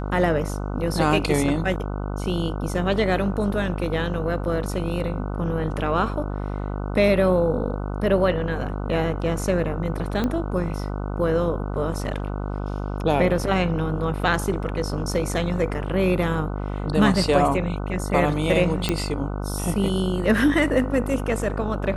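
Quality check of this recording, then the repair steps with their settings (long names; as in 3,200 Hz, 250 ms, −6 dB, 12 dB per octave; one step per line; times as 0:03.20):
mains buzz 50 Hz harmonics 30 −28 dBFS
0:10.24: click −13 dBFS
0:18.89: click −7 dBFS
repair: click removal
hum removal 50 Hz, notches 30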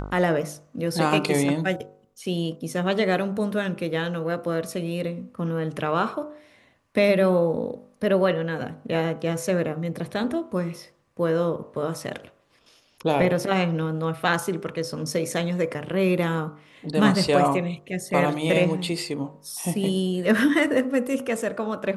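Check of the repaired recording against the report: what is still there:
none of them is left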